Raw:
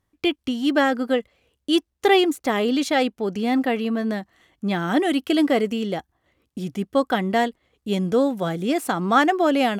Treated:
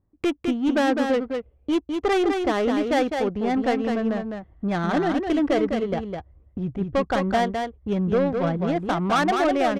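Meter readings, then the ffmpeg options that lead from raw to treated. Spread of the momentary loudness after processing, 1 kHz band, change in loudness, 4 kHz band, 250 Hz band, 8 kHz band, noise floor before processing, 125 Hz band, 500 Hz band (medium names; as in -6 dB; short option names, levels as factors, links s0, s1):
9 LU, -1.5 dB, -1.5 dB, -6.5 dB, -1.5 dB, no reading, -77 dBFS, +2.0 dB, -0.5 dB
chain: -filter_complex "[0:a]asubboost=boost=11:cutoff=72,asplit=2[s0][s1];[s1]acompressor=threshold=0.0224:ratio=6,volume=0.75[s2];[s0][s2]amix=inputs=2:normalize=0,asoftclip=type=hard:threshold=0.158,adynamicsmooth=sensitivity=1:basefreq=660,aecho=1:1:206:0.562"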